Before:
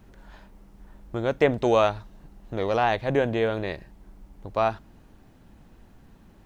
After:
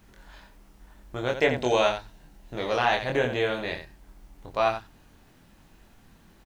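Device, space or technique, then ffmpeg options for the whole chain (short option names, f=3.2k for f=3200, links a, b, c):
slapback doubling: -filter_complex "[0:a]asplit=3[a][b][c];[b]adelay=24,volume=-3dB[d];[c]adelay=87,volume=-8dB[e];[a][d][e]amix=inputs=3:normalize=0,asettb=1/sr,asplit=3[f][g][h];[f]atrim=end=1.324[i];[g]atrim=start=1.32:end=2.54,asetpts=PTS-STARTPTS,afade=t=in:d=0.004:c=qsin,afade=t=out:st=1.216:d=0.004:c=qsin,bandreject=f=1.2k:w=6.6[j];[h]atrim=start=2.536[k];[i][j]acrossfade=d=0.004:c1=hsin:c2=qsin[l];[l][k]acrossfade=d=0.004:c1=qsin:c2=hsin,tiltshelf=f=1.1k:g=-5,volume=-1.5dB"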